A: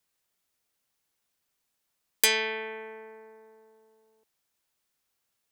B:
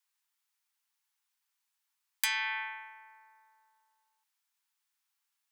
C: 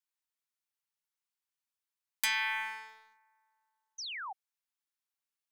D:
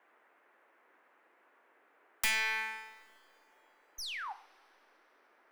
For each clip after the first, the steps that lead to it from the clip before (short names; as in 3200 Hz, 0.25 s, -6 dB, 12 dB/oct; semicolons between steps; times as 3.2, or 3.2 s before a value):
dynamic EQ 1300 Hz, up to +7 dB, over -42 dBFS, Q 0.71; elliptic high-pass 850 Hz, stop band 40 dB; compressor 2.5:1, threshold -27 dBFS, peak gain reduction 7.5 dB; gain -3 dB
sample leveller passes 2; painted sound fall, 3.98–4.33, 720–6500 Hz -34 dBFS; gain -6.5 dB
tracing distortion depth 0.21 ms; two-slope reverb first 0.5 s, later 3.6 s, from -21 dB, DRR 10 dB; band noise 300–2000 Hz -68 dBFS